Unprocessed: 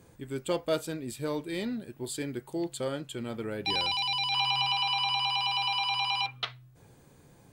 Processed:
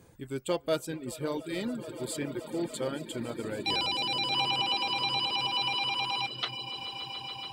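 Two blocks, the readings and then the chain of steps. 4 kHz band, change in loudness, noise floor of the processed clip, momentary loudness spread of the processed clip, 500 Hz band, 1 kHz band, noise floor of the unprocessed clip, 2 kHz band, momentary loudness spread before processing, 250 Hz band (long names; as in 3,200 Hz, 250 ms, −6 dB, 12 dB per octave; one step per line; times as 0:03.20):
−0.5 dB, −1.0 dB, −49 dBFS, 10 LU, 0.0 dB, −1.5 dB, −58 dBFS, −1.0 dB, 12 LU, 0.0 dB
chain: echo that builds up and dies away 143 ms, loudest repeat 8, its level −17 dB
reverb reduction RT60 0.67 s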